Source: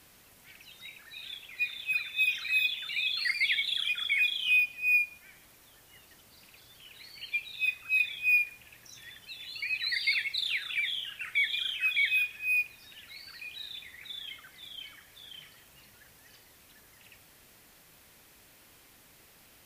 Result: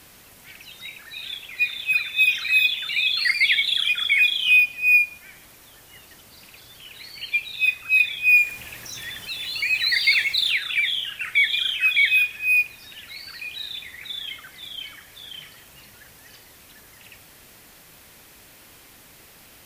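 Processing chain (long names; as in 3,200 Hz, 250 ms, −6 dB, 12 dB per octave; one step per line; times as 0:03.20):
0:08.36–0:10.51: mu-law and A-law mismatch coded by mu
level +9 dB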